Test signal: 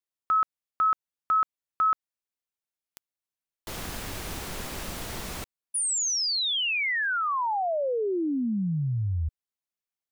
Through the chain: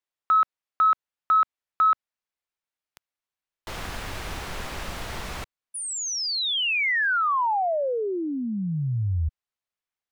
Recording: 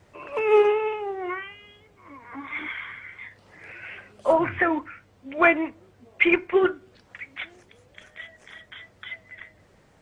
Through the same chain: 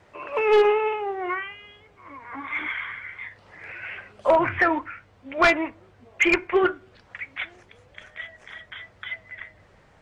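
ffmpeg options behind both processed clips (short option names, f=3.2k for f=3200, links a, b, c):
-filter_complex "[0:a]aeval=exprs='0.282*(abs(mod(val(0)/0.282+3,4)-2)-1)':c=same,asubboost=boost=2:cutoff=160,asplit=2[a][b];[b]highpass=f=720:p=1,volume=8dB,asoftclip=type=tanh:threshold=-9dB[c];[a][c]amix=inputs=2:normalize=0,lowpass=f=2.3k:p=1,volume=-6dB,volume=2dB"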